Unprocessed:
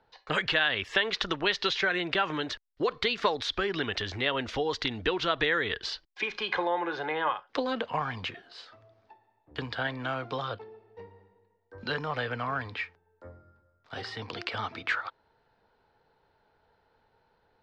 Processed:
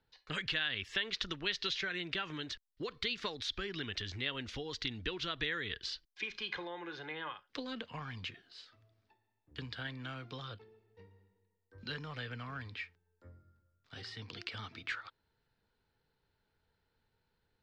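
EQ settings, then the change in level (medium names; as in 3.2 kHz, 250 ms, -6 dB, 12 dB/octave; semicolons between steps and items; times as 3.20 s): peaking EQ 740 Hz -14.5 dB 2.1 oct; -4.0 dB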